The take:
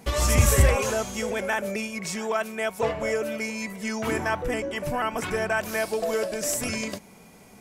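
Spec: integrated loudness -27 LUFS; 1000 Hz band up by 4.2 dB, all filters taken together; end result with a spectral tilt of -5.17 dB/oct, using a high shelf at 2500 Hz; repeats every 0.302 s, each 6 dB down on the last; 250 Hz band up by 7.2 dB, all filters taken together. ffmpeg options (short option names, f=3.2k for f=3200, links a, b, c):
-af "equalizer=f=250:t=o:g=8.5,equalizer=f=1k:t=o:g=6,highshelf=f=2.5k:g=-6.5,aecho=1:1:302|604|906|1208|1510|1812:0.501|0.251|0.125|0.0626|0.0313|0.0157,volume=-4dB"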